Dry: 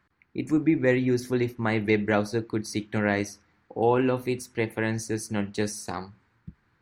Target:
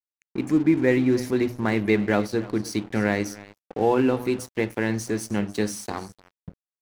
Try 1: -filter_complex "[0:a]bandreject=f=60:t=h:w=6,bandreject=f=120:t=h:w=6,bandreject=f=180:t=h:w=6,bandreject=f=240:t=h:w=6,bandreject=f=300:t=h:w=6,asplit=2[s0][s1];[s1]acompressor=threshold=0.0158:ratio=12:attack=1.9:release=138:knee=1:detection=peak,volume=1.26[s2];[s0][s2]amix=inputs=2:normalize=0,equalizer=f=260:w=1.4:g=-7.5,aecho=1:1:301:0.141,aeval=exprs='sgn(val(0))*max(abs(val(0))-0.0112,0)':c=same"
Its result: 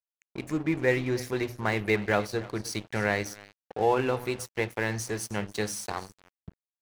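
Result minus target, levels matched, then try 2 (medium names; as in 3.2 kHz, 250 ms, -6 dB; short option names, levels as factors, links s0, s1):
250 Hz band -4.5 dB
-filter_complex "[0:a]bandreject=f=60:t=h:w=6,bandreject=f=120:t=h:w=6,bandreject=f=180:t=h:w=6,bandreject=f=240:t=h:w=6,bandreject=f=300:t=h:w=6,asplit=2[s0][s1];[s1]acompressor=threshold=0.0158:ratio=12:attack=1.9:release=138:knee=1:detection=peak,volume=1.26[s2];[s0][s2]amix=inputs=2:normalize=0,equalizer=f=260:w=1.4:g=4,aecho=1:1:301:0.141,aeval=exprs='sgn(val(0))*max(abs(val(0))-0.0112,0)':c=same"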